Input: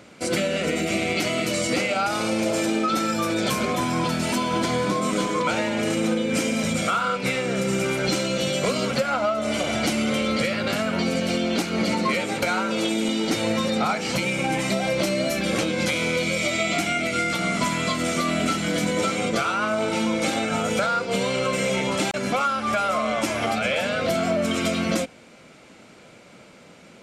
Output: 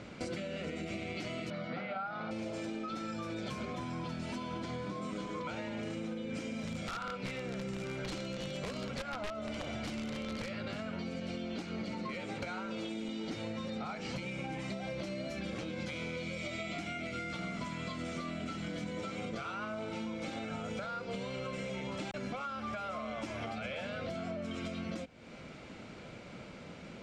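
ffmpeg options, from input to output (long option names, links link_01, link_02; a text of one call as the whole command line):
ffmpeg -i in.wav -filter_complex "[0:a]asettb=1/sr,asplit=3[link_01][link_02][link_03];[link_01]atrim=end=1.504[link_04];[link_02]atrim=start=1.5:end=2.31,asetpts=PTS-STARTPTS,afade=type=in:duration=0.004:curve=qsin,afade=type=out:start_time=0.806:duration=0.004:curve=qsin,highpass=170,equalizer=frequency=170:width_type=q:width=4:gain=9,equalizer=frequency=310:width_type=q:width=4:gain=-8,equalizer=frequency=470:width_type=q:width=4:gain=-4,equalizer=frequency=730:width_type=q:width=4:gain=7,equalizer=frequency=1400:width_type=q:width=4:gain=8,equalizer=frequency=2700:width_type=q:width=4:gain=-8,lowpass=frequency=3600:width=0.5412,lowpass=frequency=3600:width=1.3066[link_05];[link_03]atrim=start=2.306[link_06];[link_04][link_05]acrossfade=duration=0.004:curve1=hsin:curve2=qsin[link_07];[link_07][link_06]acrossfade=duration=0.004:curve1=qsin:curve2=hsin,asettb=1/sr,asplit=3[link_08][link_09][link_10];[link_08]atrim=end=6.554[link_11];[link_09]atrim=start=6.55:end=10.5,asetpts=PTS-STARTPTS,afade=type=in:duration=0.004:curve=qsin,afade=type=out:start_time=3.946:duration=0.004:curve=qsin,aeval=exprs='(mod(5.62*val(0)+1,2)-1)/5.62':channel_layout=same[link_12];[link_10]atrim=start=10.496[link_13];[link_11][link_12]acrossfade=duration=0.004:curve1=hsin:curve2=qsin[link_14];[link_14][link_13]acrossfade=duration=0.004:curve1=qsin:curve2=hsin,lowpass=5400,lowshelf=frequency=130:gain=12,acompressor=threshold=-36dB:ratio=6,volume=-2dB" out.wav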